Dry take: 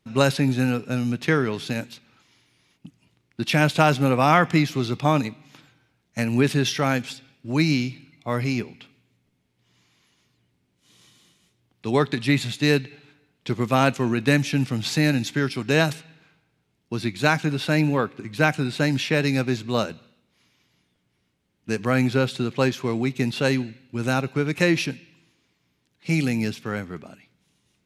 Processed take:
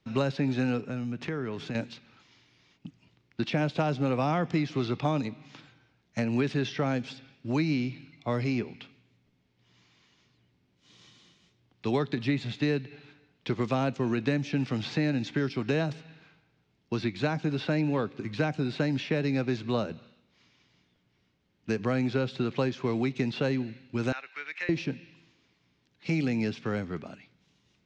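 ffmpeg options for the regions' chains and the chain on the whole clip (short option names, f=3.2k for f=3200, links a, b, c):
-filter_complex "[0:a]asettb=1/sr,asplit=3[a][b][c];[a]atrim=end=0.814[d];[b]atrim=start=0.81:end=1.75,asetpts=PTS-STARTPTS,afade=t=in:d=0.004:c=qsin,afade=t=out:st=0.936:d=0.004:c=qsin,equalizer=f=4.3k:w=1.1:g=-8,acompressor=threshold=-33dB:ratio=2.5:attack=3.2:release=140:knee=1:detection=peak[e];[c]atrim=start=1.746[f];[d][e]acrossfade=d=0.004:c1=hsin:c2=qsin[g];[g][f]acrossfade=d=0.004:c1=qsin:c2=hsin,asettb=1/sr,asplit=3[h][i][j];[h]atrim=end=24.124[k];[i]atrim=start=24.12:end=24.69,asetpts=PTS-STARTPTS,afade=t=in:d=0.004:c=qsin,afade=t=out:st=0.566:d=0.004:c=qsin,highpass=f=1.9k:t=q:w=2.5,aemphasis=mode=reproduction:type=75kf[l];[j]atrim=start=24.686[m];[k][l]acrossfade=d=0.004:c1=hsin:c2=qsin[n];[n][m]acrossfade=d=0.004:c1=qsin:c2=hsin,lowpass=f=6k:w=0.5412,lowpass=f=6k:w=1.3066,acrossover=split=270|760|3100[o][p][q][r];[o]acompressor=threshold=-31dB:ratio=4[s];[p]acompressor=threshold=-29dB:ratio=4[t];[q]acompressor=threshold=-39dB:ratio=4[u];[r]acompressor=threshold=-48dB:ratio=4[v];[s][t][u][v]amix=inputs=4:normalize=0"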